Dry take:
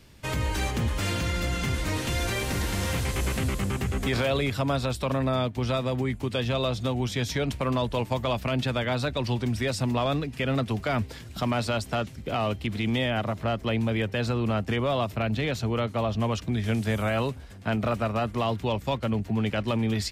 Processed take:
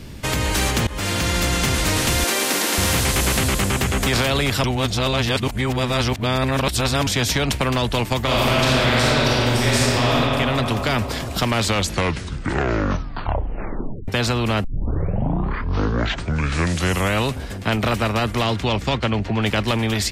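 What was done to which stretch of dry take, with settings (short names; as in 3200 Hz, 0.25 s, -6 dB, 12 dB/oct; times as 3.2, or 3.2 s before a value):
0.87–1.36 fade in, from -21.5 dB
2.24–2.78 steep high-pass 260 Hz
4.64–7.07 reverse
8.22–10.14 reverb throw, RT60 2.2 s, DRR -7.5 dB
11.46 tape stop 2.62 s
14.64 tape start 2.67 s
18.42–19.41 LPF 10000 Hz -> 4300 Hz
whole clip: low shelf 280 Hz +11.5 dB; AGC gain up to 3.5 dB; spectral compressor 2:1; gain -4 dB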